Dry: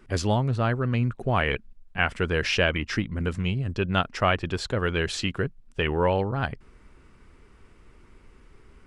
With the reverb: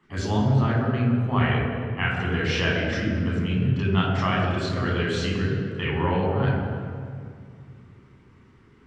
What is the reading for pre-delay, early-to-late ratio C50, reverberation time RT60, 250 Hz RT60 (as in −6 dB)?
3 ms, 1.0 dB, 2.2 s, 3.1 s